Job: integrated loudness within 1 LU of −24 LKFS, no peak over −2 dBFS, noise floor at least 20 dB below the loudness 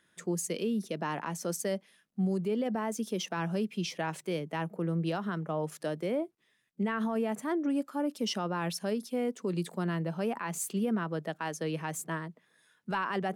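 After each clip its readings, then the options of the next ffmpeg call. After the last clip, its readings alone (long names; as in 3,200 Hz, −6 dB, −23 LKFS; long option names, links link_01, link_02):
integrated loudness −33.5 LKFS; sample peak −22.5 dBFS; target loudness −24.0 LKFS
→ -af "volume=9.5dB"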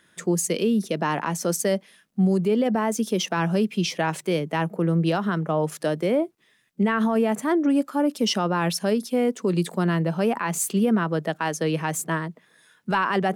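integrated loudness −24.0 LKFS; sample peak −13.0 dBFS; background noise floor −62 dBFS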